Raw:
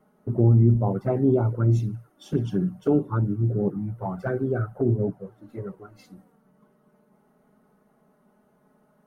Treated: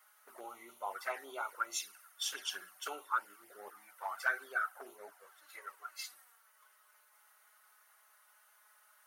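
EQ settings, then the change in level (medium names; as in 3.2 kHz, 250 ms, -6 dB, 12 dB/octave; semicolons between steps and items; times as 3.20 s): ladder high-pass 1.1 kHz, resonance 20%; treble shelf 3.2 kHz +11.5 dB; +9.0 dB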